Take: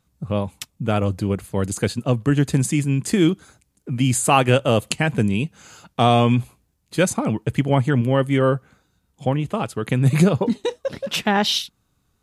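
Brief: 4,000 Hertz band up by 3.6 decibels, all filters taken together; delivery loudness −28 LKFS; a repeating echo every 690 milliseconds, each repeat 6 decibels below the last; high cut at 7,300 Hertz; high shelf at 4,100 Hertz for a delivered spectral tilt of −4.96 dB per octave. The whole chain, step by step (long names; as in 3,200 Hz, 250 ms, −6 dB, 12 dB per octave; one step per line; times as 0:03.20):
low-pass filter 7,300 Hz
parametric band 4,000 Hz +7 dB
high-shelf EQ 4,100 Hz −4 dB
repeating echo 690 ms, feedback 50%, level −6 dB
level −8 dB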